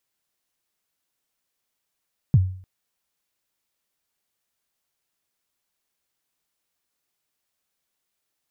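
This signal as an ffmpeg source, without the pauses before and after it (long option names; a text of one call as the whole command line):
ffmpeg -f lavfi -i "aevalsrc='0.355*pow(10,-3*t/0.5)*sin(2*PI*(160*0.039/log(93/160)*(exp(log(93/160)*min(t,0.039)/0.039)-1)+93*max(t-0.039,0)))':duration=0.3:sample_rate=44100" out.wav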